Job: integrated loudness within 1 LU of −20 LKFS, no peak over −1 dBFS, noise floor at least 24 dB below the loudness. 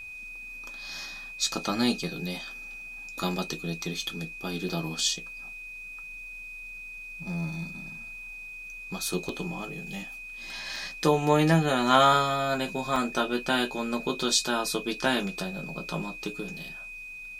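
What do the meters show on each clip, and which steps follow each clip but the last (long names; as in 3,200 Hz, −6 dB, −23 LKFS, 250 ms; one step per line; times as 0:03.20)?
number of dropouts 5; longest dropout 2.1 ms; interfering tone 2,500 Hz; level of the tone −39 dBFS; integrated loudness −29.5 LKFS; sample peak −6.5 dBFS; target loudness −20.0 LKFS
→ repair the gap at 0:04.02/0:04.69/0:09.29/0:10.76/0:12.96, 2.1 ms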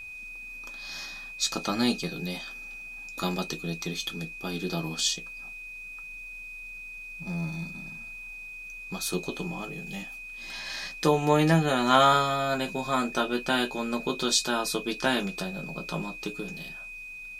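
number of dropouts 0; interfering tone 2,500 Hz; level of the tone −39 dBFS
→ notch filter 2,500 Hz, Q 30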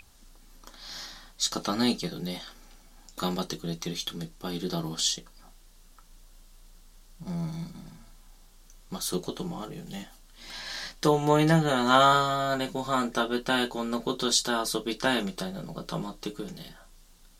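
interfering tone none found; integrated loudness −28.0 LKFS; sample peak −6.5 dBFS; target loudness −20.0 LKFS
→ level +8 dB
brickwall limiter −1 dBFS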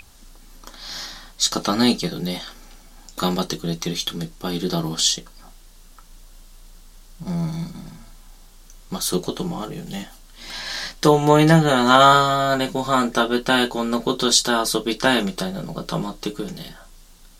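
integrated loudness −20.0 LKFS; sample peak −1.0 dBFS; background noise floor −47 dBFS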